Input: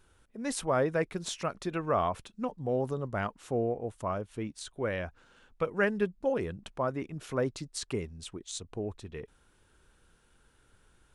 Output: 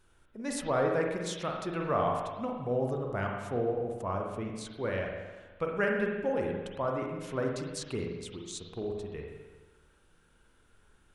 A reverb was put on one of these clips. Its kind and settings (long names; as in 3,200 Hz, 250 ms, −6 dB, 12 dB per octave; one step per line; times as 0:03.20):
spring reverb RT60 1.3 s, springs 41/53 ms, chirp 70 ms, DRR 0.5 dB
level −2.5 dB